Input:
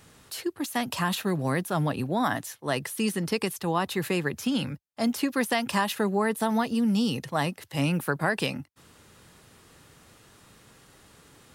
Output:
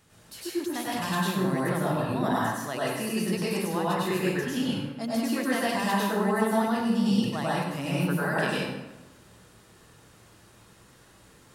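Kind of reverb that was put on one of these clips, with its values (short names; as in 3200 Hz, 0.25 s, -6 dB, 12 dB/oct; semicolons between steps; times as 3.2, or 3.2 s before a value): plate-style reverb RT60 1.1 s, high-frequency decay 0.65×, pre-delay 85 ms, DRR -7 dB; gain -8 dB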